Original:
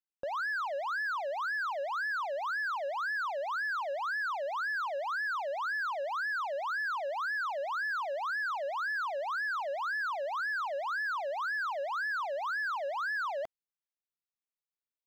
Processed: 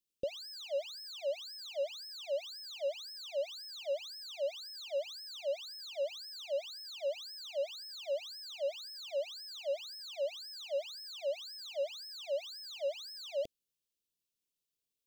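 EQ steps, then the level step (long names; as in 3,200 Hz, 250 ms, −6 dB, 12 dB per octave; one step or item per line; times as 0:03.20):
inverse Chebyshev band-stop filter 780–1,800 Hz, stop band 40 dB
+6.5 dB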